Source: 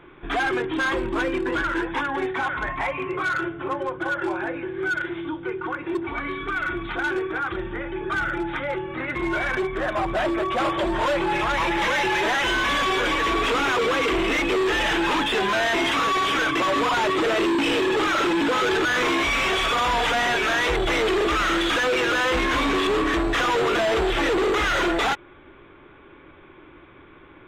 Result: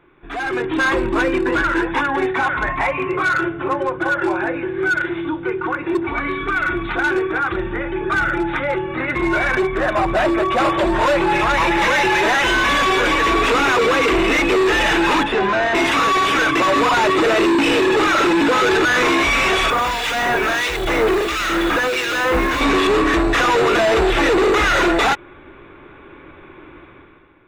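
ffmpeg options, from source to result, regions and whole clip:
-filter_complex "[0:a]asettb=1/sr,asplit=3[s0][s1][s2];[s0]atrim=end=15.234[s3];[s1]atrim=start=15.23:end=15.75,asetpts=PTS-STARTPTS,afade=t=in:d=0.004:c=qsin,afade=t=out:st=0.516:d=0.004:c=qsin,adynamicsmooth=sensitivity=1.5:basefreq=6800,highshelf=f=3200:g=-11.5[s4];[s2]atrim=start=15.746[s5];[s3][s4]acrossfade=d=0.004:c1=hsin:c2=qsin[s6];[s6][s5]acrossfade=d=0.004:c1=qsin:c2=hsin,asettb=1/sr,asplit=3[s7][s8][s9];[s7]atrim=end=19.704[s10];[s8]atrim=start=19.7:end=22.61,asetpts=PTS-STARTPTS,afade=t=in:d=0.004:c=qsin,afade=t=out:st=2.906:d=0.004:c=qsin,acrossover=split=2000[s11][s12];[s11]aeval=exprs='val(0)*(1-0.7/2+0.7/2*cos(2*PI*1.5*n/s))':c=same[s13];[s12]aeval=exprs='val(0)*(1-0.7/2-0.7/2*cos(2*PI*1.5*n/s))':c=same[s14];[s13][s14]amix=inputs=2:normalize=0,acrusher=bits=8:dc=4:mix=0:aa=0.000001[s15];[s9]atrim=start=22.606[s16];[s10][s15]acrossfade=d=0.004:c1=hsin:c2=qsin[s17];[s17][s16]acrossfade=d=0.004:c1=qsin:c2=hsin,bandreject=f=3200:w=11,dynaudnorm=f=120:g=9:m=4.47,volume=0.501"

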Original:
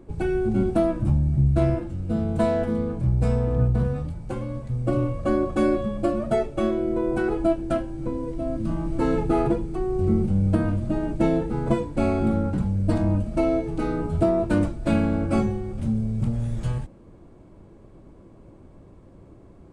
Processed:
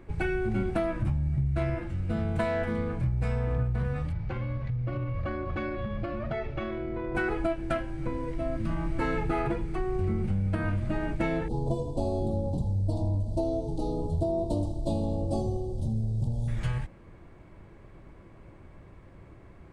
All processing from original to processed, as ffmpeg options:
-filter_complex "[0:a]asettb=1/sr,asplit=3[s0][s1][s2];[s0]atrim=end=4.124[s3];[s1]atrim=start=4.12:end=7.15,asetpts=PTS-STARTPTS,afade=t=in:d=0.004:c=qsin,afade=t=out:st=3.026:d=0.004:c=qsin,lowpass=f=5000:w=0.5412,lowpass=f=5000:w=1.3066,equalizer=f=90:w=0.91:g=7.5,acompressor=threshold=0.0501:ratio=6:attack=3.2:release=140:knee=1:detection=peak[s4];[s2]atrim=start=7.146[s5];[s3][s4]acrossfade=d=0.004:c1=hsin:c2=qsin[s6];[s6][s5]acrossfade=d=0.004:c1=qsin:c2=hsin,asettb=1/sr,asplit=3[s7][s8][s9];[s7]atrim=end=11.484[s10];[s8]atrim=start=11.48:end=16.48,asetpts=PTS-STARTPTS,afade=t=in:d=0.004:c=qsin,afade=t=out:st=4.996:d=0.004:c=qsin,asuperstop=centerf=1800:order=8:qfactor=0.62,equalizer=f=200:w=5.6:g=-7,aecho=1:1:81|162|243|324|405|486|567:0.224|0.134|0.0806|0.0484|0.029|0.0174|0.0104,atrim=end_sample=220500[s11];[s9]atrim=start=16.476[s12];[s10][s11]acrossfade=d=0.004:c1=hsin:c2=qsin[s13];[s13][s12]acrossfade=d=0.004:c1=qsin:c2=hsin,equalizer=f=250:t=o:w=1:g=-6,equalizer=f=500:t=o:w=1:g=-3,equalizer=f=2000:t=o:w=1:g=10,equalizer=f=8000:t=o:w=1:g=-4,acompressor=threshold=0.0631:ratio=6"

